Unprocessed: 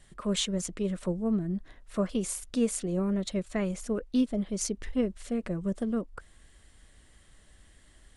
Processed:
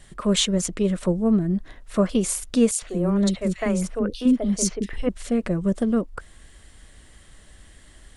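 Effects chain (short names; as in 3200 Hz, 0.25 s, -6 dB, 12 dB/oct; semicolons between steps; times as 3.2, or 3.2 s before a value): 2.71–5.09 three bands offset in time highs, mids, lows 70/110 ms, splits 360/2800 Hz; gain +8.5 dB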